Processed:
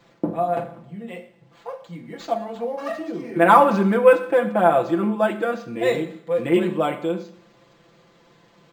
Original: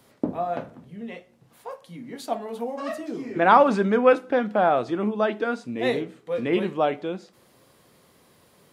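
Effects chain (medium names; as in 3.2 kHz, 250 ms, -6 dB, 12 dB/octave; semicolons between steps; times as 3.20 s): comb 5.9 ms, depth 93%; Schroeder reverb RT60 0.66 s, combs from 30 ms, DRR 10.5 dB; decimation joined by straight lines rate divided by 4×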